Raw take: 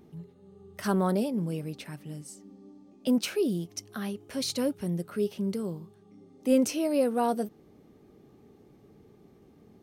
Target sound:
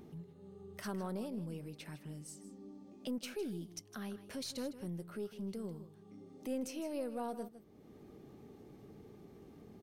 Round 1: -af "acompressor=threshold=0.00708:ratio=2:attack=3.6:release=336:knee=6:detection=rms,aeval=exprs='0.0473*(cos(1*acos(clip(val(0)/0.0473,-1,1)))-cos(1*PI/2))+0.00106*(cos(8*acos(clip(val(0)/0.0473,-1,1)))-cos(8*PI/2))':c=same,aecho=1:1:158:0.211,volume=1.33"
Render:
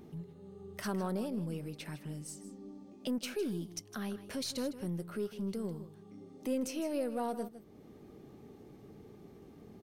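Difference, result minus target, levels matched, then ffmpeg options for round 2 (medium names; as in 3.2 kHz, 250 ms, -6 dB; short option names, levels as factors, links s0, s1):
compression: peak gain reduction -5 dB
-af "acompressor=threshold=0.00237:ratio=2:attack=3.6:release=336:knee=6:detection=rms,aeval=exprs='0.0473*(cos(1*acos(clip(val(0)/0.0473,-1,1)))-cos(1*PI/2))+0.00106*(cos(8*acos(clip(val(0)/0.0473,-1,1)))-cos(8*PI/2))':c=same,aecho=1:1:158:0.211,volume=1.33"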